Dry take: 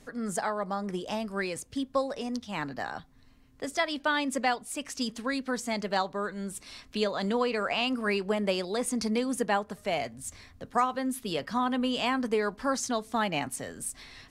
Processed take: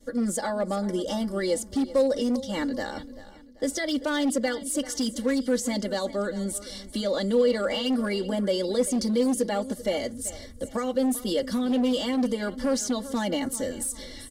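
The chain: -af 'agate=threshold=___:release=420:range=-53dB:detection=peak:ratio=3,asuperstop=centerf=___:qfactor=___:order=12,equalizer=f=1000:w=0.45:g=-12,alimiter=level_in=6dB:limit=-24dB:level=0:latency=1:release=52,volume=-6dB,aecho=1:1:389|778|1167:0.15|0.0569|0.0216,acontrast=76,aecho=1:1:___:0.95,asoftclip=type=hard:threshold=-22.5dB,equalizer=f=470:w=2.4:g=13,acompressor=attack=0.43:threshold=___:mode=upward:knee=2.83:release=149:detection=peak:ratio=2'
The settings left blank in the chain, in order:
-49dB, 2500, 5.7, 3.5, -47dB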